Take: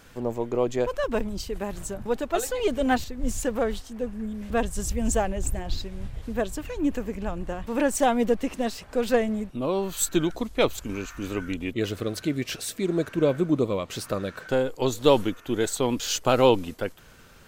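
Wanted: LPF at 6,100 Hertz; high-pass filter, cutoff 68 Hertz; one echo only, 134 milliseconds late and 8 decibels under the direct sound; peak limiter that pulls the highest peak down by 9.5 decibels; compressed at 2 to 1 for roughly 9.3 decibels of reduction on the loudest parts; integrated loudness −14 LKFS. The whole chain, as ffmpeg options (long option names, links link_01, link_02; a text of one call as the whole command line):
ffmpeg -i in.wav -af "highpass=68,lowpass=6100,acompressor=threshold=-30dB:ratio=2,alimiter=limit=-22.5dB:level=0:latency=1,aecho=1:1:134:0.398,volume=19.5dB" out.wav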